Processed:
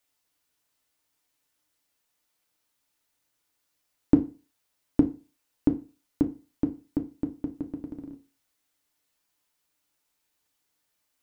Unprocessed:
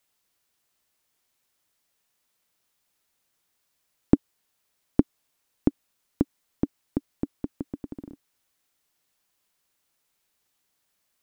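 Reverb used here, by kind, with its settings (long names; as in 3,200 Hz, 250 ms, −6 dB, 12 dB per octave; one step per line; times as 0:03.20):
feedback delay network reverb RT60 0.33 s, low-frequency decay 1×, high-frequency decay 0.9×, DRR 3.5 dB
level −3.5 dB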